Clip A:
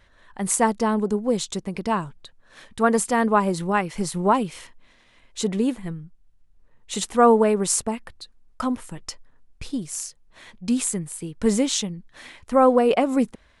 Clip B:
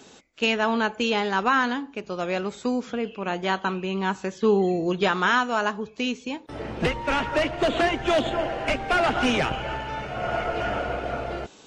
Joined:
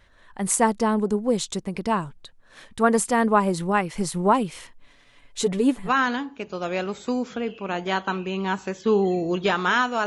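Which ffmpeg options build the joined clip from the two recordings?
-filter_complex "[0:a]asettb=1/sr,asplit=3[s0][s1][s2];[s0]atrim=end=4.814[s3];[s1]atrim=start=4.81:end=5.91,asetpts=PTS-STARTPTS,afade=t=in:d=0.004:c=qsin,afade=t=out:st=1.096:d=0.004:c=qsin,aecho=1:1:7:0.62,atrim=end_sample=48510[s4];[s2]atrim=start=5.906[s5];[s3][s4]acrossfade=d=0.004:c1=hsin:c2=qsin[s6];[s6][s5]acrossfade=d=0.004:c1=qsin:c2=hsin,apad=whole_dur=10.06,atrim=end=10.06,atrim=end=5.91,asetpts=PTS-STARTPTS[s7];[1:a]atrim=start=1.4:end=5.63,asetpts=PTS-STARTPTS[s8];[s7][s8]acrossfade=d=0.08:c1=tri:c2=tri"

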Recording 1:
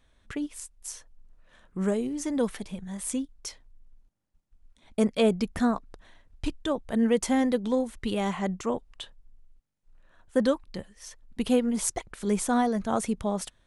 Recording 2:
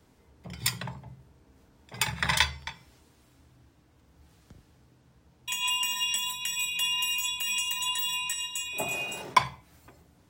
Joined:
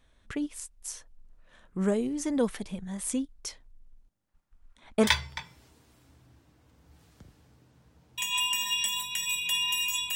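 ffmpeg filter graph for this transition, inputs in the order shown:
-filter_complex "[0:a]asplit=3[s0][s1][s2];[s0]afade=t=out:st=4.27:d=0.02[s3];[s1]equalizer=f=1300:w=0.76:g=9.5,afade=t=in:st=4.27:d=0.02,afade=t=out:st=5.11:d=0.02[s4];[s2]afade=t=in:st=5.11:d=0.02[s5];[s3][s4][s5]amix=inputs=3:normalize=0,apad=whole_dur=10.15,atrim=end=10.15,atrim=end=5.11,asetpts=PTS-STARTPTS[s6];[1:a]atrim=start=2.31:end=7.45,asetpts=PTS-STARTPTS[s7];[s6][s7]acrossfade=d=0.1:c1=tri:c2=tri"

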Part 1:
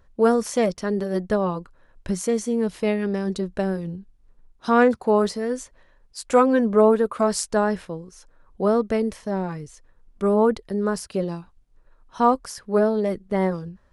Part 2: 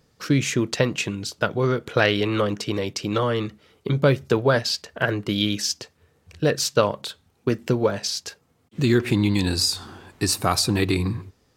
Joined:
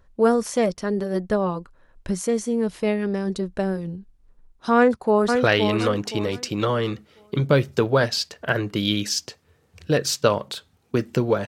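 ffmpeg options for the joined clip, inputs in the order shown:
-filter_complex "[0:a]apad=whole_dur=11.47,atrim=end=11.47,atrim=end=5.352[s0];[1:a]atrim=start=1.878:end=8[s1];[s0][s1]acrossfade=d=0.004:c1=hsin:c2=hsin,asplit=2[s2][s3];[s3]afade=t=in:st=4.76:d=0.01,afade=t=out:st=5.35:d=0.01,aecho=0:1:520|1040|1560|2080:0.562341|0.168702|0.0506107|0.0151832[s4];[s2][s4]amix=inputs=2:normalize=0"

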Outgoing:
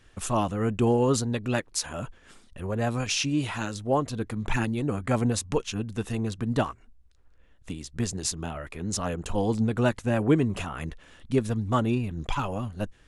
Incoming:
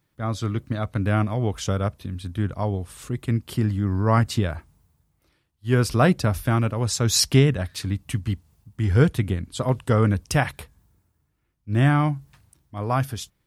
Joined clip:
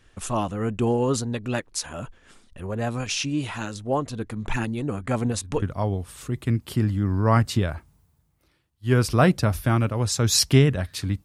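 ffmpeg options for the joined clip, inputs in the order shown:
-filter_complex "[1:a]asplit=2[s0][s1];[0:a]apad=whole_dur=11.24,atrim=end=11.24,atrim=end=5.622[s2];[s1]atrim=start=2.428:end=8.05[s3];[s0]atrim=start=1.9:end=2.43,asetpts=PTS-STARTPTS,volume=0.178,afade=t=in:d=0.004:c=hsin,afade=t=out:st=0.526:d=0.004:c=hsin,adelay=224469S[s4];[s2][s3]acrossfade=d=0.004:c1=hsin:c2=hsin[s5];[s5][s4]amix=inputs=2:normalize=0"

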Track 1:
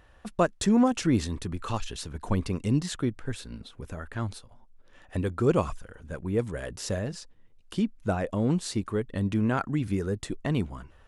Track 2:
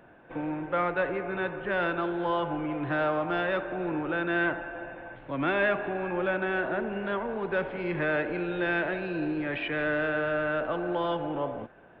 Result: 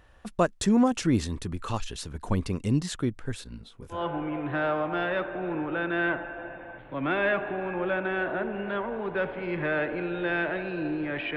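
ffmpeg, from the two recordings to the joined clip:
-filter_complex "[0:a]asettb=1/sr,asplit=3[s0][s1][s2];[s0]atrim=end=3.444[s3];[s1]atrim=start=3.44:end=4.05,asetpts=PTS-STARTPTS,afade=t=in:d=0.004:c=qsin,afade=t=out:st=0.606:d=0.004:c=qsin,flanger=delay=16:depth=5.6:speed=0.87[s4];[s2]atrim=start=4.046[s5];[s3][s4]acrossfade=d=0.004:c1=hsin:c2=qsin[s6];[s6][s5]acrossfade=d=0.004:c1=qsin:c2=hsin,apad=whole_dur=11.36,atrim=end=11.36,atrim=end=4.05,asetpts=PTS-STARTPTS[s7];[1:a]atrim=start=2.26:end=9.73,asetpts=PTS-STARTPTS[s8];[s7][s8]acrossfade=d=0.16:c1=tri:c2=tri"

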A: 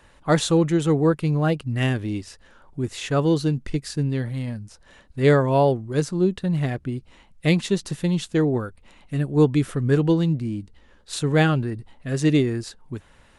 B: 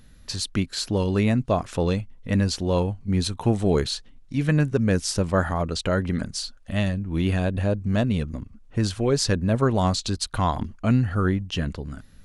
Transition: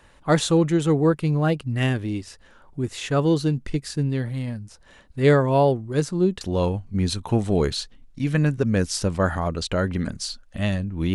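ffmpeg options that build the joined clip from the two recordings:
-filter_complex "[0:a]apad=whole_dur=11.14,atrim=end=11.14,atrim=end=6.412[s0];[1:a]atrim=start=2.548:end=7.28[s1];[s0][s1]acrossfade=d=0.004:c1=hsin:c2=hsin"

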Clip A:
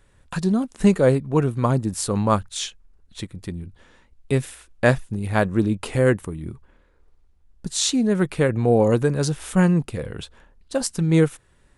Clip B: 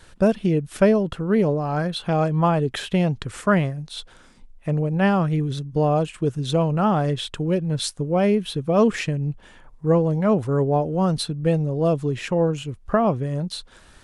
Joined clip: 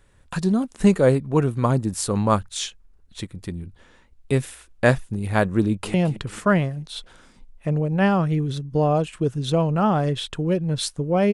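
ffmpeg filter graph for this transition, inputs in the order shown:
-filter_complex "[0:a]apad=whole_dur=11.33,atrim=end=11.33,atrim=end=5.942[s0];[1:a]atrim=start=2.948:end=8.34[s1];[s0][s1]acrossfade=d=0.004:c1=hsin:c2=hsin,asplit=2[s2][s3];[s3]afade=t=in:st=5.62:d=0.01,afade=t=out:st=5.94:d=0.01,aecho=0:1:220|440|660|880|1100:0.199526|0.0997631|0.0498816|0.0249408|0.0124704[s4];[s2][s4]amix=inputs=2:normalize=0"

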